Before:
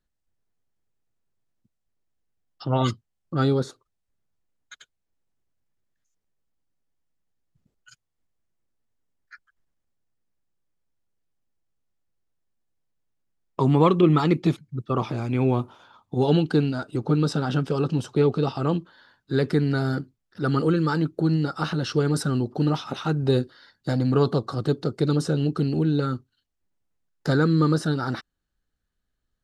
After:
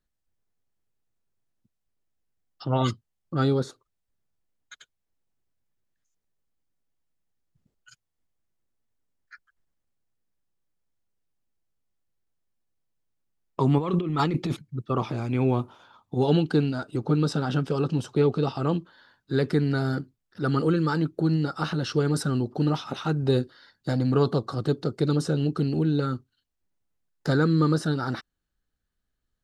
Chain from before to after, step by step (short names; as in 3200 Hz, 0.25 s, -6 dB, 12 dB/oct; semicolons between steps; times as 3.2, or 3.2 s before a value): 13.78–14.62 negative-ratio compressor -24 dBFS, ratio -1; gain -1.5 dB